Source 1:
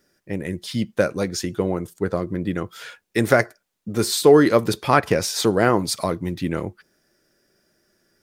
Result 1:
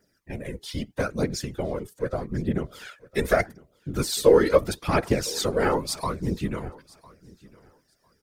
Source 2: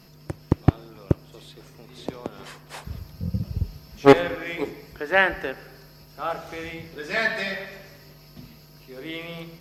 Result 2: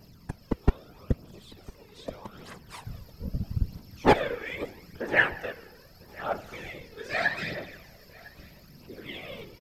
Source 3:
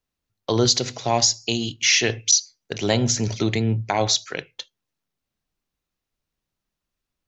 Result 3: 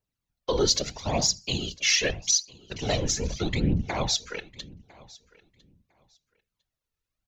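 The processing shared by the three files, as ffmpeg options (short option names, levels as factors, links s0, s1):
-af "afftfilt=real='hypot(re,im)*cos(2*PI*random(0))':imag='hypot(re,im)*sin(2*PI*random(1))':win_size=512:overlap=0.75,aphaser=in_gain=1:out_gain=1:delay=2.4:decay=0.51:speed=0.79:type=triangular,aecho=1:1:1003|2006:0.0708|0.0135"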